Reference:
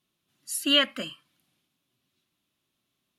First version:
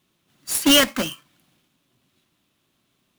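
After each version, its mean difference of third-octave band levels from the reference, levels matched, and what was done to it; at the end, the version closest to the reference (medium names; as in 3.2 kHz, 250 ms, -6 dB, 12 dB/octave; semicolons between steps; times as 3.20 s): 8.0 dB: square wave that keeps the level; peak limiter -13.5 dBFS, peak gain reduction 4 dB; trim +5.5 dB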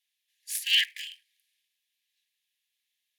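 11.0 dB: cycle switcher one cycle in 3, inverted; brick-wall FIR high-pass 1.6 kHz; trim -1 dB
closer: first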